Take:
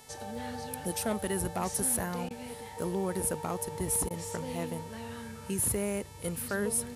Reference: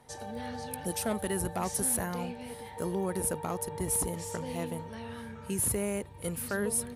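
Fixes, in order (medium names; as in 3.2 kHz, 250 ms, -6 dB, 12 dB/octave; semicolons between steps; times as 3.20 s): de-hum 438.4 Hz, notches 28; interpolate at 2.29/4.09 s, 14 ms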